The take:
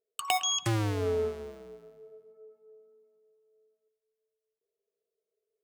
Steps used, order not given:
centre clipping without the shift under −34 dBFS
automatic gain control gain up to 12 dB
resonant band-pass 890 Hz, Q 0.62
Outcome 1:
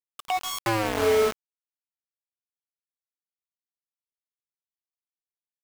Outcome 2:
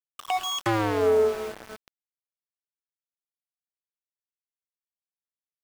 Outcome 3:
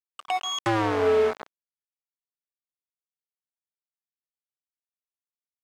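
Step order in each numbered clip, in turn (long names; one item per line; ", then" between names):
resonant band-pass, then centre clipping without the shift, then automatic gain control
resonant band-pass, then automatic gain control, then centre clipping without the shift
centre clipping without the shift, then resonant band-pass, then automatic gain control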